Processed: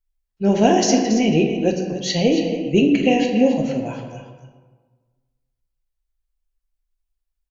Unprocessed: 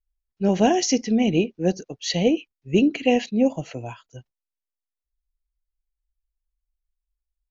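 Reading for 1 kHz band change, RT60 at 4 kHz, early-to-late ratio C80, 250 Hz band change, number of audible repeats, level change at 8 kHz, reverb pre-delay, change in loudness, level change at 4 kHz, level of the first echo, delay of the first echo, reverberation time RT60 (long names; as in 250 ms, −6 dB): +4.5 dB, 0.80 s, 5.5 dB, +4.0 dB, 1, can't be measured, 5 ms, +3.5 dB, +3.5 dB, −10.5 dB, 278 ms, 1.4 s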